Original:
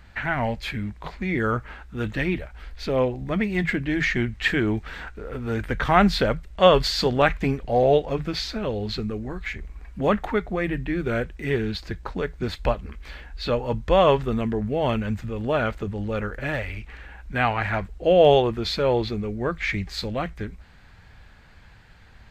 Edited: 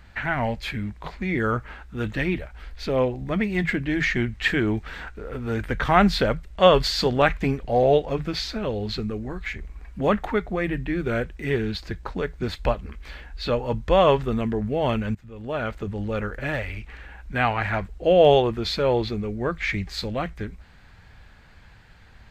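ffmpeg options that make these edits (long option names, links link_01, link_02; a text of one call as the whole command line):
ffmpeg -i in.wav -filter_complex "[0:a]asplit=2[link_01][link_02];[link_01]atrim=end=15.15,asetpts=PTS-STARTPTS,afade=type=out:start_time=15.146:duration=0.004:curve=hsin:silence=0.105925[link_03];[link_02]atrim=start=15.15,asetpts=PTS-STARTPTS,afade=type=in:duration=0.8:silence=0.105925[link_04];[link_03][link_04]concat=n=2:v=0:a=1" out.wav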